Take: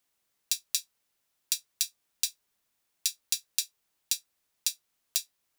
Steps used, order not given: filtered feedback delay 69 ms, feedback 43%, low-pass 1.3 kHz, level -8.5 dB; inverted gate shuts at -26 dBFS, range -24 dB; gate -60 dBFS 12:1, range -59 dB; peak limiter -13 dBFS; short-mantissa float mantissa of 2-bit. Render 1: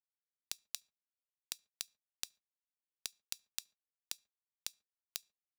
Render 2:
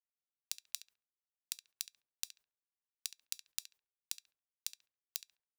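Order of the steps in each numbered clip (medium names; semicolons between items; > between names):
short-mantissa float > peak limiter > filtered feedback delay > inverted gate > gate; inverted gate > gate > filtered feedback delay > short-mantissa float > peak limiter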